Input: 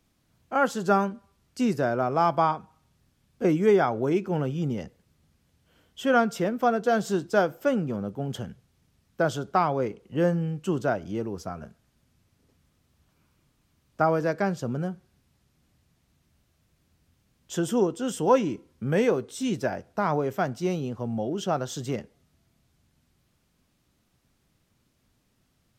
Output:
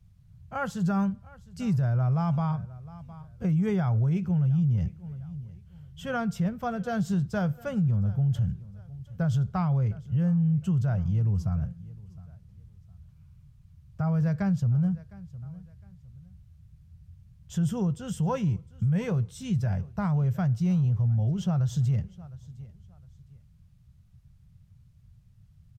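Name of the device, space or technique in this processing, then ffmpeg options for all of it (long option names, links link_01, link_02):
car stereo with a boomy subwoofer: -af "lowshelf=frequency=150:width_type=q:width=1.5:gain=12.5,lowshelf=frequency=230:width_type=q:width=3:gain=9,aecho=1:1:709|1418:0.0794|0.023,alimiter=limit=-12.5dB:level=0:latency=1:release=49,volume=-7dB"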